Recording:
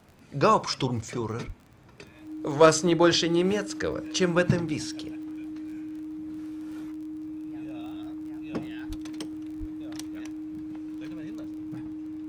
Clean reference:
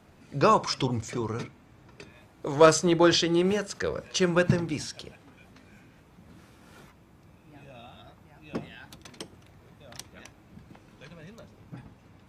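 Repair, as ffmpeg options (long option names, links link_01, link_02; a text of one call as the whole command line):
ffmpeg -i in.wav -filter_complex "[0:a]adeclick=threshold=4,bandreject=frequency=310:width=30,asplit=3[link_01][link_02][link_03];[link_01]afade=type=out:start_time=1.46:duration=0.02[link_04];[link_02]highpass=frequency=140:width=0.5412,highpass=frequency=140:width=1.3066,afade=type=in:start_time=1.46:duration=0.02,afade=type=out:start_time=1.58:duration=0.02[link_05];[link_03]afade=type=in:start_time=1.58:duration=0.02[link_06];[link_04][link_05][link_06]amix=inputs=3:normalize=0,asplit=3[link_07][link_08][link_09];[link_07]afade=type=out:start_time=8.88:duration=0.02[link_10];[link_08]highpass=frequency=140:width=0.5412,highpass=frequency=140:width=1.3066,afade=type=in:start_time=8.88:duration=0.02,afade=type=out:start_time=9:duration=0.02[link_11];[link_09]afade=type=in:start_time=9:duration=0.02[link_12];[link_10][link_11][link_12]amix=inputs=3:normalize=0,asplit=3[link_13][link_14][link_15];[link_13]afade=type=out:start_time=9.59:duration=0.02[link_16];[link_14]highpass=frequency=140:width=0.5412,highpass=frequency=140:width=1.3066,afade=type=in:start_time=9.59:duration=0.02,afade=type=out:start_time=9.71:duration=0.02[link_17];[link_15]afade=type=in:start_time=9.71:duration=0.02[link_18];[link_16][link_17][link_18]amix=inputs=3:normalize=0" out.wav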